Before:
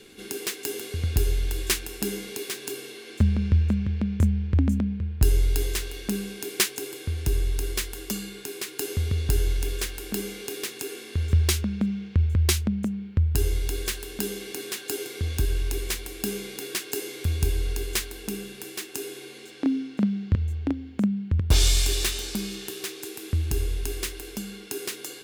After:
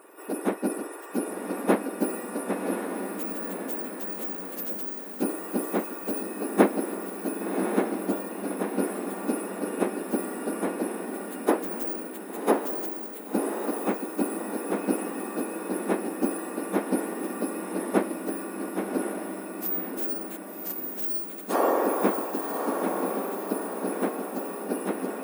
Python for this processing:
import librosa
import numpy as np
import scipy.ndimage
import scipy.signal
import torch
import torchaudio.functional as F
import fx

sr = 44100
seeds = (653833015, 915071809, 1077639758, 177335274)

y = fx.octave_mirror(x, sr, pivot_hz=2000.0)
y = fx.echo_diffused(y, sr, ms=1097, feedback_pct=53, wet_db=-5)
y = y * librosa.db_to_amplitude(-1.0)